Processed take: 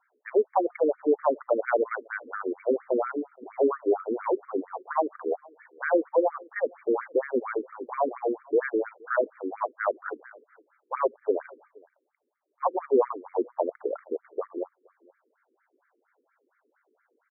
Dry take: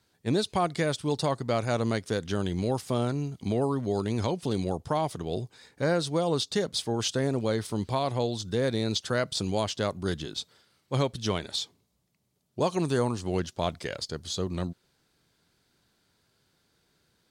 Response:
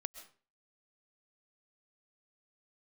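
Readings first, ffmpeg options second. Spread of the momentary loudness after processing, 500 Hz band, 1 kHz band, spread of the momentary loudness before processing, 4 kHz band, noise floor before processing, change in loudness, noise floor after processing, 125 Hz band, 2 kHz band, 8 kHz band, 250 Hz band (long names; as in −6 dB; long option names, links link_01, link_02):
10 LU, +3.5 dB, +2.5 dB, 7 LU, below −40 dB, −72 dBFS, +1.0 dB, −76 dBFS, below −35 dB, +2.0 dB, below −40 dB, −3.0 dB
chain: -filter_complex "[0:a]highpass=210,lowpass=2200,asplit=2[link_01][link_02];[link_02]adelay=472.3,volume=-26dB,highshelf=frequency=4000:gain=-10.6[link_03];[link_01][link_03]amix=inputs=2:normalize=0,afftfilt=real='re*between(b*sr/1024,350*pow(1700/350,0.5+0.5*sin(2*PI*4.3*pts/sr))/1.41,350*pow(1700/350,0.5+0.5*sin(2*PI*4.3*pts/sr))*1.41)':imag='im*between(b*sr/1024,350*pow(1700/350,0.5+0.5*sin(2*PI*4.3*pts/sr))/1.41,350*pow(1700/350,0.5+0.5*sin(2*PI*4.3*pts/sr))*1.41)':win_size=1024:overlap=0.75,volume=8.5dB"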